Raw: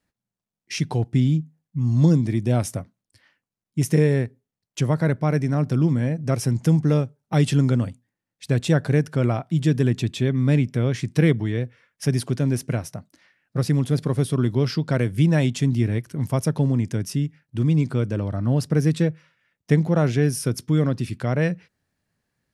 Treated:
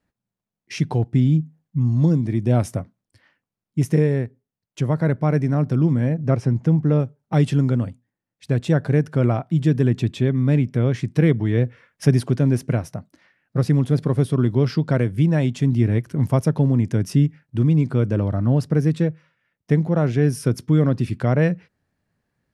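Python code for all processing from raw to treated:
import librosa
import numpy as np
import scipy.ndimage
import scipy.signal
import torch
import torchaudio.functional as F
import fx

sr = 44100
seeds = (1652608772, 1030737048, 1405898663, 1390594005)

y = fx.chain(x, sr, fx.lowpass(hz=8400.0, slope=12),
    fx.high_shelf(hz=4200.0, db=-11.0), at=(6.14, 7.0))
y = fx.high_shelf(y, sr, hz=2700.0, db=-9.5)
y = fx.rider(y, sr, range_db=10, speed_s=0.5)
y = y * 10.0 ** (2.5 / 20.0)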